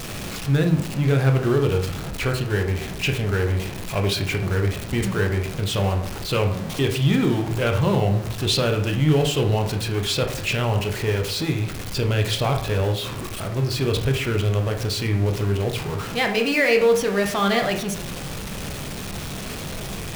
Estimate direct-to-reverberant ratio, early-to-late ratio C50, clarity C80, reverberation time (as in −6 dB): 3.5 dB, 8.5 dB, 12.0 dB, 0.65 s